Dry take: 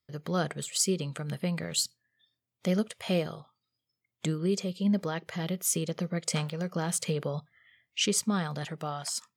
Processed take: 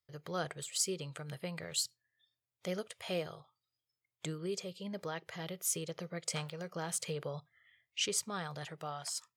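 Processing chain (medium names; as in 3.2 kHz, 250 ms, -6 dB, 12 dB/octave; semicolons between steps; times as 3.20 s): peaking EQ 220 Hz -13.5 dB 0.72 oct; trim -5.5 dB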